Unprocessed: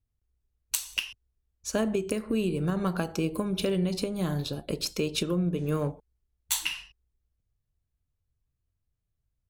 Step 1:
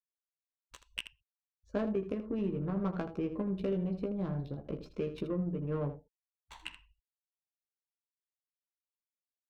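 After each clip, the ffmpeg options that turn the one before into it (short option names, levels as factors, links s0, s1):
-af "afftfilt=real='re*gte(hypot(re,im),0.00562)':imag='im*gte(hypot(re,im),0.00562)':win_size=1024:overlap=0.75,adynamicsmooth=sensitivity=1:basefreq=840,aecho=1:1:15|79:0.501|0.266,volume=0.473"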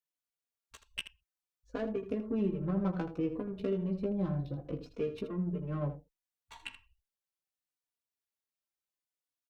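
-filter_complex "[0:a]asplit=2[s0][s1];[s1]adelay=3.5,afreqshift=-0.66[s2];[s0][s2]amix=inputs=2:normalize=1,volume=1.41"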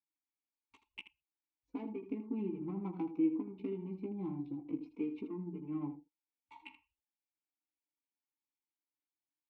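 -filter_complex "[0:a]asplit=3[s0][s1][s2];[s0]bandpass=f=300:t=q:w=8,volume=1[s3];[s1]bandpass=f=870:t=q:w=8,volume=0.501[s4];[s2]bandpass=f=2240:t=q:w=8,volume=0.355[s5];[s3][s4][s5]amix=inputs=3:normalize=0,volume=2.37"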